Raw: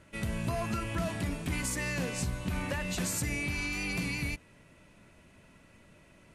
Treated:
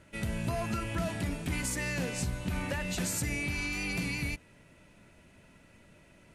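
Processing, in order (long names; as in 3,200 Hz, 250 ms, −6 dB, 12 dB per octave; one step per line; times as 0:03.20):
notch filter 1,100 Hz, Q 12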